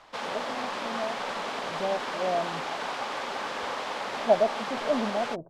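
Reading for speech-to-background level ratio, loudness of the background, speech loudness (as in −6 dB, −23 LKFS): 2.5 dB, −33.0 LKFS, −30.5 LKFS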